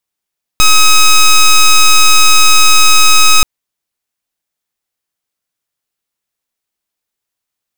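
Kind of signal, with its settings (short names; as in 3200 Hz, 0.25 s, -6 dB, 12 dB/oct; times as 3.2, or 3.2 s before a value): pulse 1270 Hz, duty 10% -4.5 dBFS 2.83 s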